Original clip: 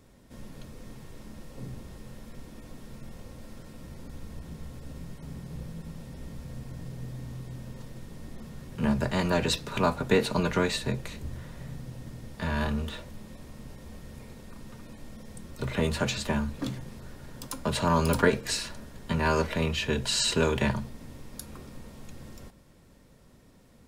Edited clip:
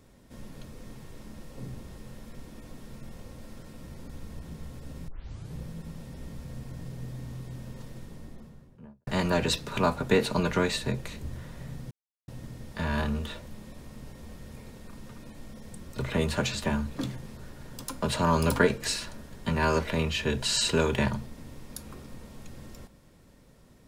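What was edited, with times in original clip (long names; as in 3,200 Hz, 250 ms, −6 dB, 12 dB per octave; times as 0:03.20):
0:05.08: tape start 0.46 s
0:07.92–0:09.07: fade out and dull
0:11.91: splice in silence 0.37 s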